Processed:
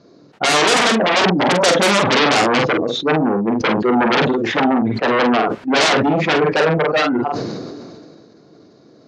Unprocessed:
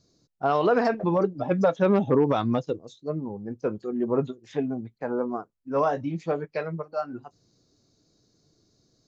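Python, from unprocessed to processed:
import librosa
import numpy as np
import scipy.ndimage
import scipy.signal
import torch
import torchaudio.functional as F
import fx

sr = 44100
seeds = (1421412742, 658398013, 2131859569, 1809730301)

p1 = scipy.signal.sosfilt(scipy.signal.butter(2, 2000.0, 'lowpass', fs=sr, output='sos'), x)
p2 = fx.fold_sine(p1, sr, drive_db=19, ceiling_db=-10.5)
p3 = p1 + (p2 * 10.0 ** (-3.0 / 20.0))
p4 = scipy.signal.sosfilt(scipy.signal.butter(2, 240.0, 'highpass', fs=sr, output='sos'), p3)
p5 = fx.doubler(p4, sr, ms=45.0, db=-6.5)
p6 = fx.sustainer(p5, sr, db_per_s=27.0)
y = p6 * 10.0 ** (1.0 / 20.0)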